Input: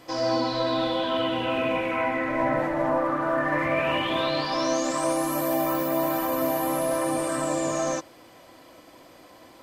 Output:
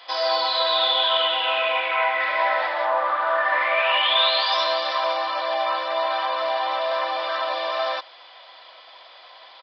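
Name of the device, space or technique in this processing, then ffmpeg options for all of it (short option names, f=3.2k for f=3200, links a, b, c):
musical greeting card: -filter_complex "[0:a]asettb=1/sr,asplit=3[a][b][c];[a]atrim=end=2.204[d];[b]atrim=start=2.2:end=2.85,asetpts=PTS-STARTPTS,afade=t=in:d=0.004:c=qsin,afade=t=out:st=0.646:d=0.004:c=qsin,aemphasis=mode=production:type=75fm[e];[c]atrim=start=2.846[f];[d][e]acrossfade=d=0.004:c1=hsin:c2=qsin[g];[g][f]acrossfade=d=0.004:c1=qsin:c2=hsin,aresample=11025,aresample=44100,highpass=f=690:w=0.5412,highpass=f=690:w=1.3066,equalizer=f=3.5k:t=o:w=0.41:g=10,volume=6dB"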